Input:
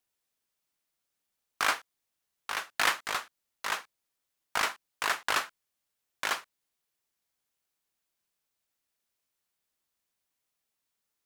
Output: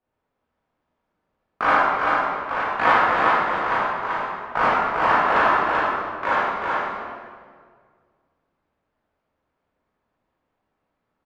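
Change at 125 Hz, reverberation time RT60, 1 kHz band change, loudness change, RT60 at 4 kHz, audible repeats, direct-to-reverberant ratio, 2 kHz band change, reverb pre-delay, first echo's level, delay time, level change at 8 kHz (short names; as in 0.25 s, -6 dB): +20.0 dB, 1.8 s, +17.0 dB, +11.0 dB, 1.4 s, 1, -10.5 dB, +10.5 dB, 14 ms, -3.5 dB, 0.387 s, under -10 dB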